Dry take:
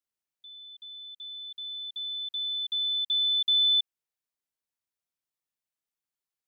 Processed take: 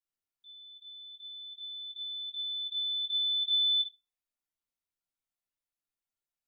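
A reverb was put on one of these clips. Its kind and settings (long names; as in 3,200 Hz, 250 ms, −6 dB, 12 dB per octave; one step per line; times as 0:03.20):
rectangular room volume 160 cubic metres, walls furnished, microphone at 3.3 metres
level −11 dB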